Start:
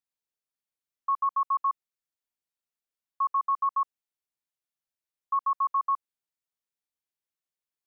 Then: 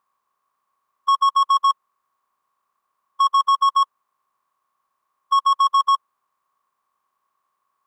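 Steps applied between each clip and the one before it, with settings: spectral levelling over time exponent 0.6; waveshaping leveller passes 2; trim +7.5 dB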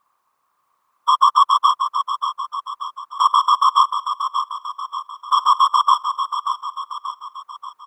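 peak limiter -17 dBFS, peak gain reduction 4.5 dB; whisper effect; feedback delay 584 ms, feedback 50%, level -8 dB; trim +6.5 dB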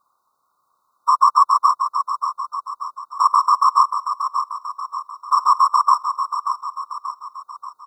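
brick-wall FIR band-stop 1.5–3.6 kHz

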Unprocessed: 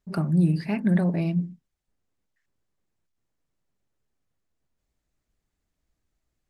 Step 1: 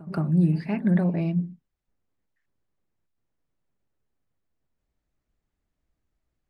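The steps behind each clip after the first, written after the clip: treble shelf 4 kHz -11 dB; pre-echo 170 ms -20.5 dB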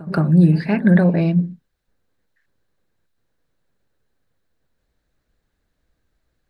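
graphic EQ with 31 bands 500 Hz +6 dB, 1.6 kHz +8 dB, 4 kHz +7 dB; trim +8 dB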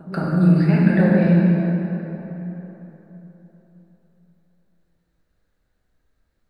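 plate-style reverb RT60 3.8 s, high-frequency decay 0.55×, DRR -5 dB; trim -6.5 dB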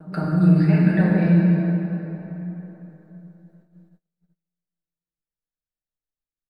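gate -52 dBFS, range -27 dB; comb 6.5 ms; trim -4 dB

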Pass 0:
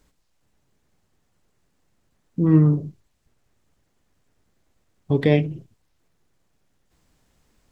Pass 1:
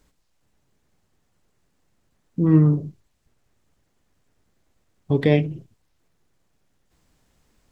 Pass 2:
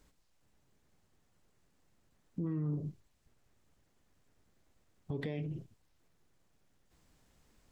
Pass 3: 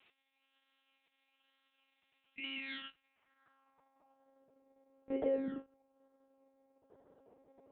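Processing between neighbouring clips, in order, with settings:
no audible change
compression, threshold -23 dBFS, peak gain reduction 12.5 dB; peak limiter -24.5 dBFS, peak gain reduction 10.5 dB; trim -4 dB
decimation with a swept rate 24×, swing 60% 1.1 Hz; monotone LPC vocoder at 8 kHz 270 Hz; band-pass sweep 2.9 kHz -> 490 Hz, 2.90–4.46 s; trim +14 dB

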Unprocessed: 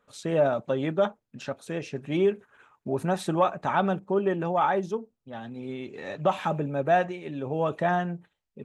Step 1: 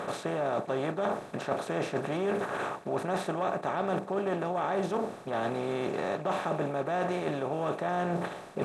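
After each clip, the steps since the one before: spectral levelling over time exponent 0.4; reverse; compression 10:1, threshold -27 dBFS, peak gain reduction 14.5 dB; reverse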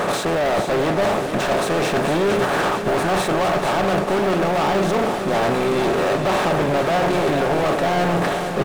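waveshaping leveller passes 5; feedback delay 452 ms, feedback 57%, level -8 dB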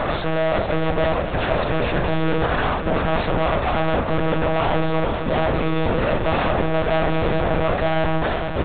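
monotone LPC vocoder at 8 kHz 160 Hz; de-hum 47.83 Hz, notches 40

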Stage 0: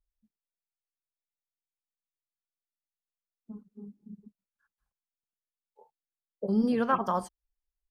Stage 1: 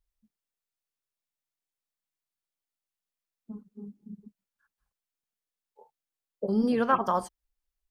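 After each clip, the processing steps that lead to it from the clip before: dynamic bell 190 Hz, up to -4 dB, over -40 dBFS; trim +2.5 dB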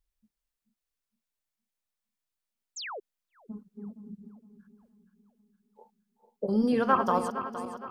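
backward echo that repeats 232 ms, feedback 65%, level -9 dB; painted sound fall, 2.76–3.00 s, 360–7900 Hz -38 dBFS; bucket-brigade echo 472 ms, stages 4096, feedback 61%, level -21.5 dB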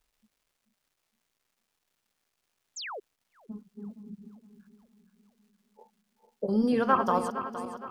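crackle 540 per s -64 dBFS

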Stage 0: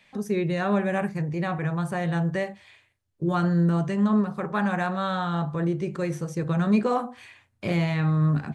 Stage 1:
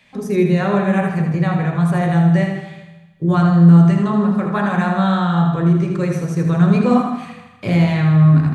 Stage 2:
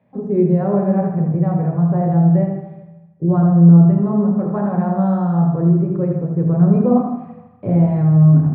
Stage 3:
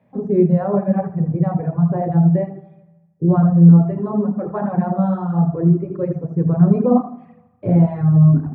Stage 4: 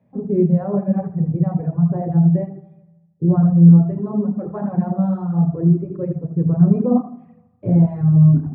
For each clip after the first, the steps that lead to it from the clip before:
thinning echo 79 ms, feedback 56%, high-pass 370 Hz, level -6.5 dB; on a send at -5 dB: reverberation RT60 1.0 s, pre-delay 3 ms; on the sum: trim +4.5 dB
Chebyshev band-pass 100–660 Hz, order 2; trim +1 dB
reverb removal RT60 1.9 s; trim +1.5 dB
bass shelf 480 Hz +10 dB; trim -9 dB

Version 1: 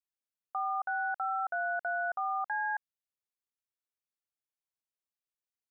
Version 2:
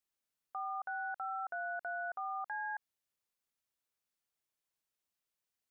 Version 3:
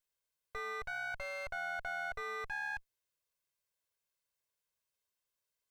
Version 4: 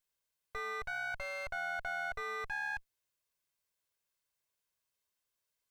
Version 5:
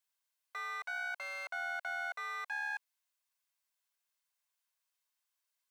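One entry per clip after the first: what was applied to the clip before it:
peak limiter -37.5 dBFS, peak gain reduction 11 dB; trim +4.5 dB
comb filter that takes the minimum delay 1.9 ms; trim +2 dB
peaking EQ 510 Hz -2.5 dB 0.33 oct; trim +1.5 dB
high-pass 690 Hz 24 dB/octave

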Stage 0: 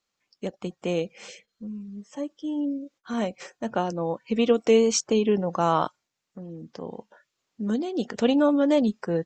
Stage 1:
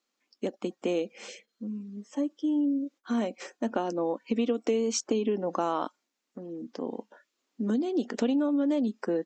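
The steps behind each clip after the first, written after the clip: resonant low shelf 180 Hz -12 dB, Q 3; compression 6:1, threshold -23 dBFS, peak gain reduction 11.5 dB; trim -1 dB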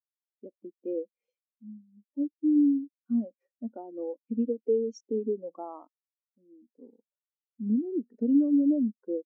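spectral contrast expander 2.5:1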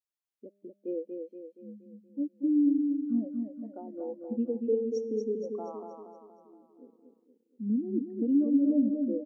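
feedback comb 200 Hz, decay 1.4 s, mix 50%; on a send: feedback delay 236 ms, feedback 49%, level -5 dB; on the sum: trim +3.5 dB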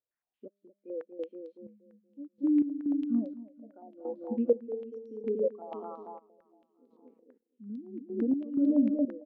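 trance gate "xx...xx...x." 63 bpm -12 dB; step-sequenced low-pass 8.9 Hz 550–4000 Hz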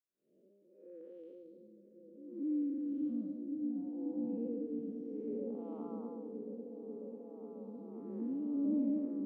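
spectral blur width 267 ms; peaking EQ 610 Hz -3.5 dB 1.8 oct; delay with an opening low-pass 541 ms, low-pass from 200 Hz, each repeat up 1 oct, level 0 dB; trim -4.5 dB

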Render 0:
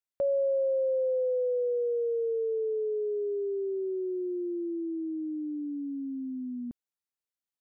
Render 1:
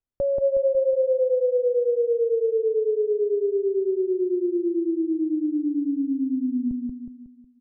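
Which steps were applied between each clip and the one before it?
tilt EQ -4.5 dB/octave; feedback delay 183 ms, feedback 45%, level -3 dB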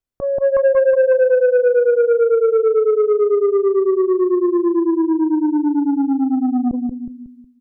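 level rider gain up to 5.5 dB; transformer saturation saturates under 430 Hz; trim +3 dB

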